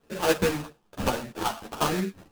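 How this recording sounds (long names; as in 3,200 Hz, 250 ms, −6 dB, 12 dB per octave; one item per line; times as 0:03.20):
phaser sweep stages 12, 1.1 Hz, lowest notch 380–1,300 Hz
aliases and images of a low sample rate 2,100 Hz, jitter 20%
sample-and-hold tremolo
a shimmering, thickened sound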